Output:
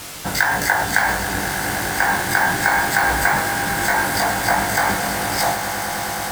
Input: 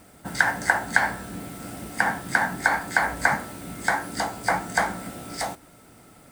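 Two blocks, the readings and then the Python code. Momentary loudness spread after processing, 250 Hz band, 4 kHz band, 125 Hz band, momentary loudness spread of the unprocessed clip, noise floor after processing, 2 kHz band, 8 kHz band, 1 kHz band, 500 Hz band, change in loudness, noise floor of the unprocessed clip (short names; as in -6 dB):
5 LU, +6.5 dB, +12.0 dB, +9.0 dB, 14 LU, -25 dBFS, +6.0 dB, +11.5 dB, +7.5 dB, +8.0 dB, +6.0 dB, -52 dBFS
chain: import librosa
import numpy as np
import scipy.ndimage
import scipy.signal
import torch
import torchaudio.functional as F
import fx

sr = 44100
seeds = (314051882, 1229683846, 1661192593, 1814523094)

p1 = fx.peak_eq(x, sr, hz=240.0, db=-8.5, octaves=0.81)
p2 = fx.over_compress(p1, sr, threshold_db=-31.0, ratio=-1.0)
p3 = p1 + (p2 * librosa.db_to_amplitude(3.0))
p4 = fx.quant_dither(p3, sr, seeds[0], bits=6, dither='triangular')
p5 = fx.doubler(p4, sr, ms=20.0, db=-4.5)
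p6 = fx.echo_swell(p5, sr, ms=105, loudest=8, wet_db=-14.5)
y = np.repeat(p6[::2], 2)[:len(p6)]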